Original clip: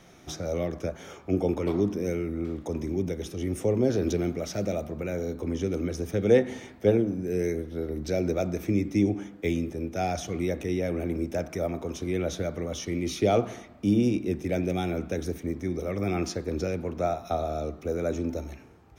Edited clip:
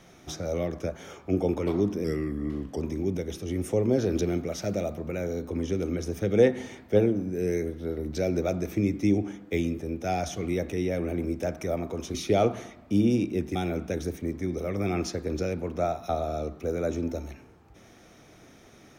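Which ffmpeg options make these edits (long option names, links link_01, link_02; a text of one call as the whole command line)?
ffmpeg -i in.wav -filter_complex "[0:a]asplit=5[link_01][link_02][link_03][link_04][link_05];[link_01]atrim=end=2.044[link_06];[link_02]atrim=start=2.04:end=2.72,asetpts=PTS-STARTPTS,asetrate=39249,aresample=44100,atrim=end_sample=33694,asetpts=PTS-STARTPTS[link_07];[link_03]atrim=start=2.716:end=12.062[link_08];[link_04]atrim=start=13.068:end=14.482[link_09];[link_05]atrim=start=14.768[link_10];[link_06][link_07]acrossfade=duration=0.004:curve1=hsin:curve2=hsin[link_11];[link_11][link_08]acrossfade=duration=0.004:curve1=hsin:curve2=hsin[link_12];[link_12][link_09]acrossfade=duration=0.004:curve1=hsin:curve2=hsin[link_13];[link_13][link_10]acrossfade=duration=0.004:curve1=hsin:curve2=hsin" out.wav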